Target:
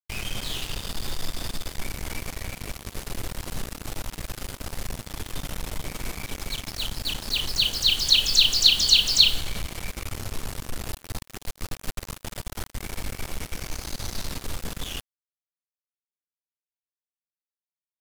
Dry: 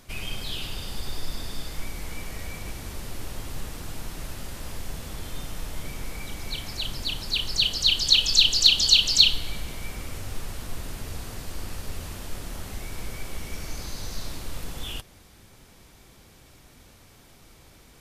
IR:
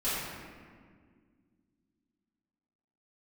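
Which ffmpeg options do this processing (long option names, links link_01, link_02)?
-filter_complex "[0:a]asettb=1/sr,asplit=3[link_01][link_02][link_03];[link_01]atrim=end=10.884[link_04];[link_02]atrim=start=10.88:end=12.75,asetpts=PTS-STARTPTS,afade=type=in:duration=0.004:curve=qsin,afade=type=out:start_time=1.866:duration=0.004:curve=qsin,aeval=exprs='0.1*(cos(1*acos(clip(val(0)/0.1,-1,1)))-cos(1*PI/2))+0.0316*(cos(2*acos(clip(val(0)/0.1,-1,1)))-cos(2*PI/2))+0.0112*(cos(3*acos(clip(val(0)/0.1,-1,1)))-cos(3*PI/2))+0.00562*(cos(6*acos(clip(val(0)/0.1,-1,1)))-cos(6*PI/2))':channel_layout=same[link_05];[link_03]atrim=start=12.746[link_06];[link_04][link_05]acrossfade=duration=0.004:curve1=hsin:curve2=qsin[link_07];[link_07][link_06]acrossfade=duration=0.004:curve1=qsin:curve2=hsin,acrusher=bits=4:mix=0:aa=0.5"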